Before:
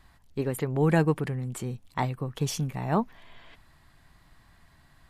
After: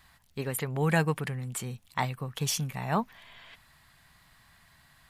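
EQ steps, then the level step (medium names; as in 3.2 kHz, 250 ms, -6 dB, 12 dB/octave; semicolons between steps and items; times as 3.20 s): tone controls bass +8 dB, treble -6 dB; tilt EQ +3.5 dB/octave; peaking EQ 320 Hz -6 dB 0.58 oct; 0.0 dB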